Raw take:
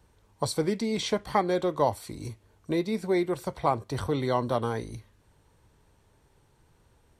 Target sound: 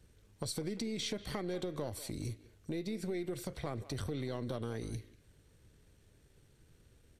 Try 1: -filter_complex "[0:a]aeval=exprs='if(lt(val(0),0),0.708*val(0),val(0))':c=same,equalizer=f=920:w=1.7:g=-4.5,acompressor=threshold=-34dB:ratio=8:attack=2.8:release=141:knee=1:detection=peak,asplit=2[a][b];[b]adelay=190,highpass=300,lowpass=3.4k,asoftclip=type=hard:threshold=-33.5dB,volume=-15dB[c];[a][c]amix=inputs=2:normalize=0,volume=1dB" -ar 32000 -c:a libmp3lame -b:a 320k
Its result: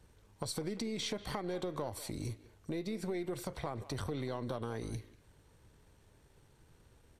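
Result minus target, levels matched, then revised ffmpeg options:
1000 Hz band +4.0 dB
-filter_complex "[0:a]aeval=exprs='if(lt(val(0),0),0.708*val(0),val(0))':c=same,equalizer=f=920:w=1.7:g=-15,acompressor=threshold=-34dB:ratio=8:attack=2.8:release=141:knee=1:detection=peak,asplit=2[a][b];[b]adelay=190,highpass=300,lowpass=3.4k,asoftclip=type=hard:threshold=-33.5dB,volume=-15dB[c];[a][c]amix=inputs=2:normalize=0,volume=1dB" -ar 32000 -c:a libmp3lame -b:a 320k

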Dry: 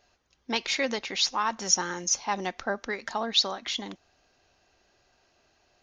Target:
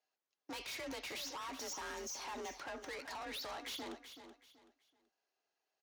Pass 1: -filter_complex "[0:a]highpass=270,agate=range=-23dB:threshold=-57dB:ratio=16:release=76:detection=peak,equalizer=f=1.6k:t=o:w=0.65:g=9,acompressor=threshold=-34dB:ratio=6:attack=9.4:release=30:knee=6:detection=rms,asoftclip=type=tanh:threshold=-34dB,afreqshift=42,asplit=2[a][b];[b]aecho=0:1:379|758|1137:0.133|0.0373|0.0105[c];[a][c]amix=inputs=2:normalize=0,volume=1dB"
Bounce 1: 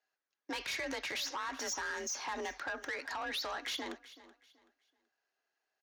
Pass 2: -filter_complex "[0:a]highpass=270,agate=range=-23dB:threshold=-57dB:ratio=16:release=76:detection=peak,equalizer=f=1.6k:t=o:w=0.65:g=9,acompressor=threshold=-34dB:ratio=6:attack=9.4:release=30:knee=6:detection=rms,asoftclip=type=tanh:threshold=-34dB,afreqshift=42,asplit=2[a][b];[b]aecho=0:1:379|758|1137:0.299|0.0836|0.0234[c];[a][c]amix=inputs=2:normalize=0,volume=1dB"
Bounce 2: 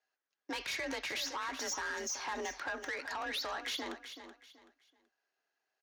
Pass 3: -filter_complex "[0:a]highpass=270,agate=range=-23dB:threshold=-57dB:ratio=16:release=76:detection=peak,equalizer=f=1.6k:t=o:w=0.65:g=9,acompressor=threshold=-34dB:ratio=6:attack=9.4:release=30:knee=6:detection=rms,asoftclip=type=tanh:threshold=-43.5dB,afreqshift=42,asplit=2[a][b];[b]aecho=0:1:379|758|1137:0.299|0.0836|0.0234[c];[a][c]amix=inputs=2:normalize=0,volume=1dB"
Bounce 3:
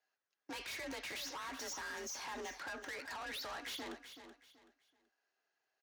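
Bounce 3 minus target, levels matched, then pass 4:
2000 Hz band +2.5 dB
-filter_complex "[0:a]highpass=270,agate=range=-23dB:threshold=-57dB:ratio=16:release=76:detection=peak,acompressor=threshold=-34dB:ratio=6:attack=9.4:release=30:knee=6:detection=rms,asoftclip=type=tanh:threshold=-43.5dB,afreqshift=42,asplit=2[a][b];[b]aecho=0:1:379|758|1137:0.299|0.0836|0.0234[c];[a][c]amix=inputs=2:normalize=0,volume=1dB"

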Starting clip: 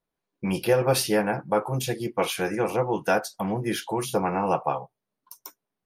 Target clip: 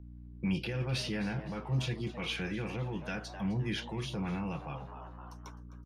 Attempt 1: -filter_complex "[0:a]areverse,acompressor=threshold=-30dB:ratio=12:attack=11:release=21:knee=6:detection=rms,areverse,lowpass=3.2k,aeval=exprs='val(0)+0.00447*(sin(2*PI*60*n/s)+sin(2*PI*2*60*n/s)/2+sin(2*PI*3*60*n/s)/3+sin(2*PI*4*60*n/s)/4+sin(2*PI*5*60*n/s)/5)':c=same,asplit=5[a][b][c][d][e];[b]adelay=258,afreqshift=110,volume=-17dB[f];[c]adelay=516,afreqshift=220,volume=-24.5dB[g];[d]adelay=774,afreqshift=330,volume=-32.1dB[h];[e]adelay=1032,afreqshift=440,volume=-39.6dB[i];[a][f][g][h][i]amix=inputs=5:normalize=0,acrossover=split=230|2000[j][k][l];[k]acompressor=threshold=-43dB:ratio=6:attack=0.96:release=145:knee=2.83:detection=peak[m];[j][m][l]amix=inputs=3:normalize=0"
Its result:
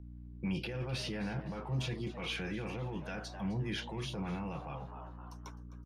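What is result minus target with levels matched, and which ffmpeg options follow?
compressor: peak gain reduction +6.5 dB
-filter_complex "[0:a]areverse,acompressor=threshold=-23dB:ratio=12:attack=11:release=21:knee=6:detection=rms,areverse,lowpass=3.2k,aeval=exprs='val(0)+0.00447*(sin(2*PI*60*n/s)+sin(2*PI*2*60*n/s)/2+sin(2*PI*3*60*n/s)/3+sin(2*PI*4*60*n/s)/4+sin(2*PI*5*60*n/s)/5)':c=same,asplit=5[a][b][c][d][e];[b]adelay=258,afreqshift=110,volume=-17dB[f];[c]adelay=516,afreqshift=220,volume=-24.5dB[g];[d]adelay=774,afreqshift=330,volume=-32.1dB[h];[e]adelay=1032,afreqshift=440,volume=-39.6dB[i];[a][f][g][h][i]amix=inputs=5:normalize=0,acrossover=split=230|2000[j][k][l];[k]acompressor=threshold=-43dB:ratio=6:attack=0.96:release=145:knee=2.83:detection=peak[m];[j][m][l]amix=inputs=3:normalize=0"

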